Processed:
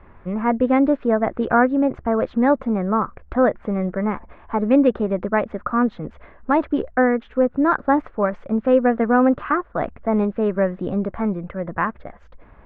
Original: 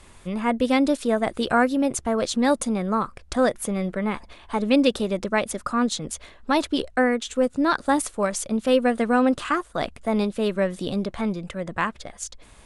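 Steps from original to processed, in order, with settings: low-pass 1.8 kHz 24 dB/octave; trim +3.5 dB

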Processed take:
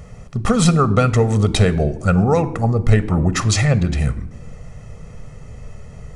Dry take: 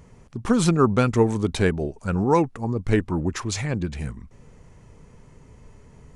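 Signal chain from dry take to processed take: compression, threshold -20 dBFS, peak gain reduction 8.5 dB; reverberation RT60 0.85 s, pre-delay 19 ms, DRR 14.5 dB; trim +8 dB

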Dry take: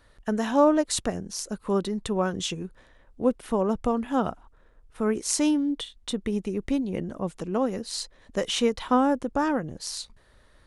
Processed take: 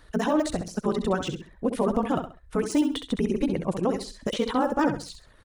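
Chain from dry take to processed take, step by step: de-esser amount 95%; reverb removal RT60 0.92 s; peak limiter -19.5 dBFS, peak gain reduction 10.5 dB; granular stretch 0.51×, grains 34 ms; on a send: feedback delay 66 ms, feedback 28%, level -8.5 dB; on the sum: trim +6 dB

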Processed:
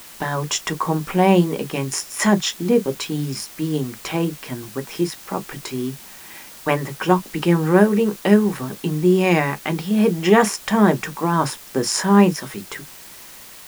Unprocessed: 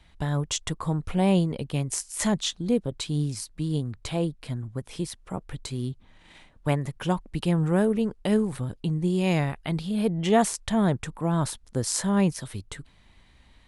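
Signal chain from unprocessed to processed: reverberation, pre-delay 3 ms, DRR 7.5 dB; wow and flutter 29 cents; in parallel at -4 dB: word length cut 6-bit, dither triangular; on the sum: trim -1 dB

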